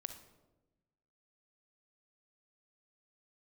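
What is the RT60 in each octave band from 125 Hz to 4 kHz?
1.5, 1.4, 1.2, 0.95, 0.70, 0.65 seconds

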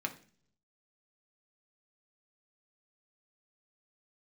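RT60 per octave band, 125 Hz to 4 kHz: 0.95, 0.75, 0.55, 0.40, 0.45, 0.50 seconds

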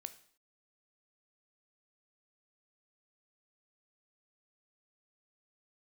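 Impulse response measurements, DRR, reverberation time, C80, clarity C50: 10.5 dB, non-exponential decay, 18.0 dB, 14.5 dB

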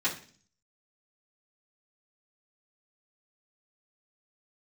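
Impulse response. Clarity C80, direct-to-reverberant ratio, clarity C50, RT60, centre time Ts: 15.0 dB, −10.5 dB, 10.5 dB, 0.45 s, 18 ms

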